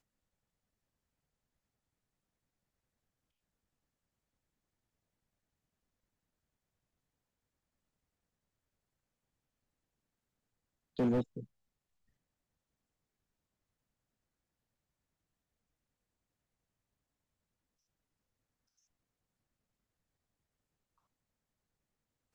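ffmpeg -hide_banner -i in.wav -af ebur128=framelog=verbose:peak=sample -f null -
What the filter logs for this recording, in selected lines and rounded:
Integrated loudness:
  I:         -34.2 LUFS
  Threshold: -45.9 LUFS
Loudness range:
  LRA:        12.3 LU
  Threshold: -61.8 LUFS
  LRA low:   -53.4 LUFS
  LRA high:  -41.1 LUFS
Sample peak:
  Peak:      -23.1 dBFS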